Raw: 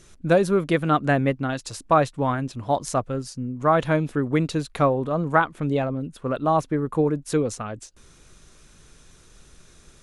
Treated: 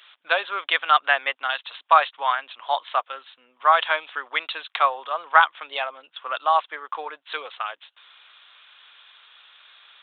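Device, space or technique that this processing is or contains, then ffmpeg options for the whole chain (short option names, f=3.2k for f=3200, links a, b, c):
musical greeting card: -af "aresample=8000,aresample=44100,highpass=f=860:w=0.5412,highpass=f=860:w=1.3066,equalizer=f=3.3k:t=o:w=0.6:g=9,volume=6dB"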